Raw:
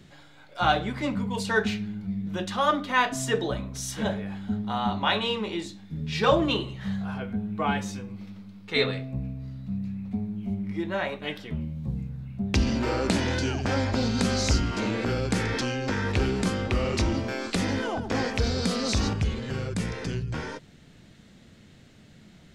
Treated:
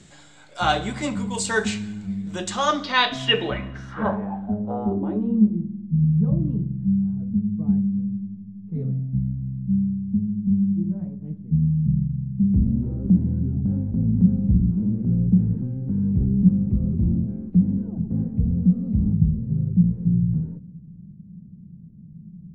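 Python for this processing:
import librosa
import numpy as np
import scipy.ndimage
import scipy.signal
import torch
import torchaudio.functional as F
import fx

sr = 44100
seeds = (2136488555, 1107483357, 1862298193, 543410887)

y = fx.filter_sweep_lowpass(x, sr, from_hz=7800.0, to_hz=170.0, start_s=2.49, end_s=5.62, q=6.2)
y = fx.rev_fdn(y, sr, rt60_s=1.1, lf_ratio=1.5, hf_ratio=0.95, size_ms=28.0, drr_db=16.0)
y = y * librosa.db_to_amplitude(1.5)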